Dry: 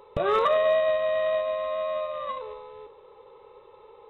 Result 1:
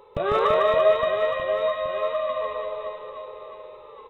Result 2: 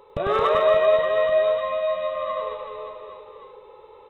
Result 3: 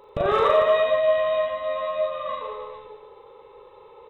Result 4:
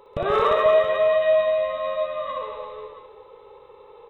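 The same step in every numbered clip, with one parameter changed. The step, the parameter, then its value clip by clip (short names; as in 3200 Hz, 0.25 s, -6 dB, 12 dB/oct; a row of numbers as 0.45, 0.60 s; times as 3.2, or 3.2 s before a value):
reverse bouncing-ball echo, first gap: 150, 100, 40, 60 ms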